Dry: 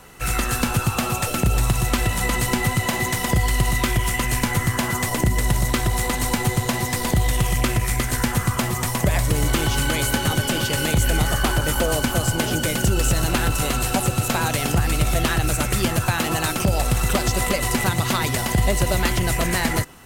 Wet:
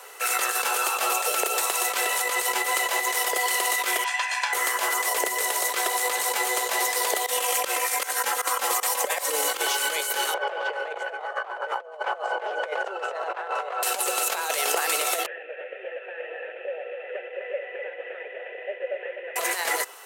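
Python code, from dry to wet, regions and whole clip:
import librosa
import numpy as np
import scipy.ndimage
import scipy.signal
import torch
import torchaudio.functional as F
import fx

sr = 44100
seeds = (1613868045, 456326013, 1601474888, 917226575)

y = fx.chain(x, sr, fx.highpass(hz=1100.0, slope=12),
    fx.air_absorb(metres=130.0),
    fx.comb(ms=1.2, depth=0.62), at=(4.04, 4.53))
y = fx.chain(y, sr, fx.comb(ms=3.8, depth=0.76),
    fx.volume_shaper(bpm=156, per_beat=1, depth_db=-22, release_ms=113.0, shape='fast start'), at=(7.26, 9.61))
y = fx.chain(y, sr, fx.lowpass(hz=1300.0, slope=12),
    fx.low_shelf_res(hz=380.0, db=-13.5, q=1.5),
    fx.over_compress(threshold_db=-31.0, ratio=-0.5), at=(10.34, 13.83))
y = fx.chain(y, sr, fx.cvsd(bps=16000),
    fx.vowel_filter(vowel='e'),
    fx.echo_single(ms=252, db=-7.5), at=(15.26, 19.36))
y = scipy.signal.sosfilt(scipy.signal.ellip(4, 1.0, 70, 430.0, 'highpass', fs=sr, output='sos'), y)
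y = fx.high_shelf(y, sr, hz=6500.0, db=3.5)
y = fx.over_compress(y, sr, threshold_db=-26.0, ratio=-0.5)
y = F.gain(torch.from_numpy(y), 1.5).numpy()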